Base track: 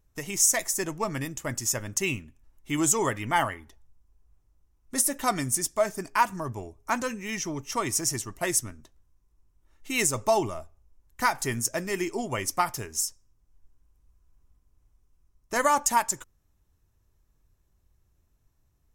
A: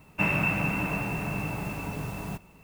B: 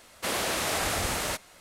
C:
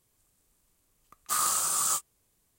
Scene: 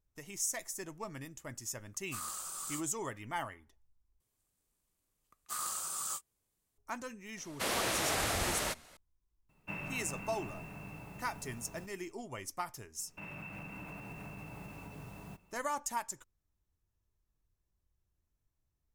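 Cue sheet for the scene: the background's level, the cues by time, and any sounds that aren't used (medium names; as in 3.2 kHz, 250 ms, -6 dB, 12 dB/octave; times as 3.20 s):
base track -13.5 dB
0.82 s: add C -14.5 dB
4.20 s: replace with C -11 dB
7.37 s: add B -4.5 dB
9.49 s: add A -16 dB
12.99 s: add A -13.5 dB + peak limiter -24 dBFS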